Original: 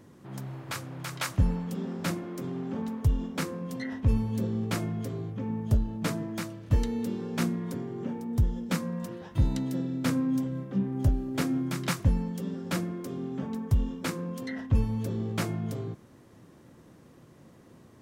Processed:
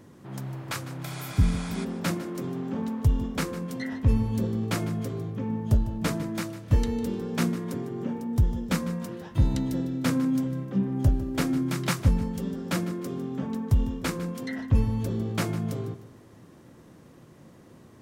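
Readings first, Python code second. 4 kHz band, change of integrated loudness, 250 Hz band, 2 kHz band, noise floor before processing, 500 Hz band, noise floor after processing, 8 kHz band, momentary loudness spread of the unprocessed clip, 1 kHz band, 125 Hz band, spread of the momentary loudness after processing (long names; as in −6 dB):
+2.5 dB, +2.5 dB, +2.5 dB, +2.0 dB, −55 dBFS, +2.5 dB, −52 dBFS, +2.5 dB, 8 LU, +2.5 dB, +2.5 dB, 8 LU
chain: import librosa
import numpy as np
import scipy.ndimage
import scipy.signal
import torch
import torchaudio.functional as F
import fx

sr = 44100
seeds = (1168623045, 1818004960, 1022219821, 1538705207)

y = fx.spec_repair(x, sr, seeds[0], start_s=1.07, length_s=0.75, low_hz=450.0, high_hz=11000.0, source='before')
y = fx.echo_feedback(y, sr, ms=152, feedback_pct=36, wet_db=-15.0)
y = y * 10.0 ** (2.5 / 20.0)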